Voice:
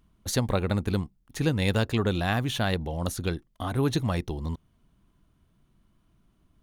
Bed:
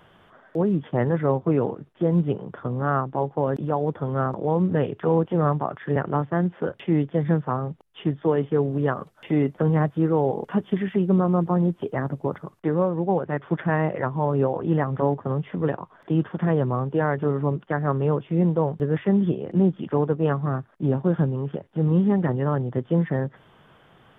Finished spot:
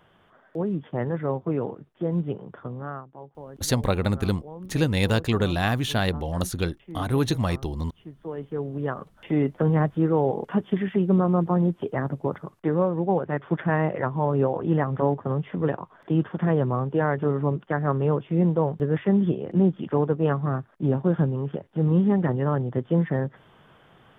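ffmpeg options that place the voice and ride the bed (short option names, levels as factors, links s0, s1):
-filter_complex "[0:a]adelay=3350,volume=1.33[s0];[1:a]volume=4.22,afade=t=out:st=2.58:d=0.48:silence=0.223872,afade=t=in:st=8.13:d=1.4:silence=0.133352[s1];[s0][s1]amix=inputs=2:normalize=0"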